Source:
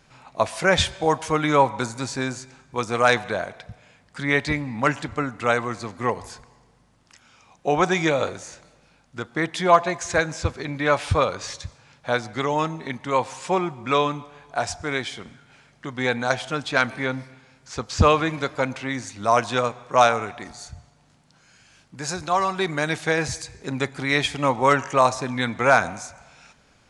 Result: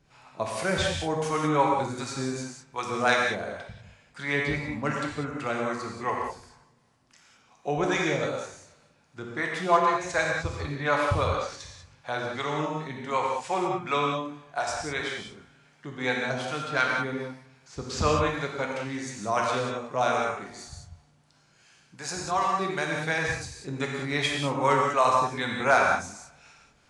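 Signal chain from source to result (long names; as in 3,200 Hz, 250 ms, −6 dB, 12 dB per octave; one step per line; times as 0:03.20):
mains-hum notches 50/100 Hz
two-band tremolo in antiphase 2.7 Hz, depth 70%, crossover 480 Hz
reverb whose tail is shaped and stops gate 220 ms flat, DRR −1 dB
level −4.5 dB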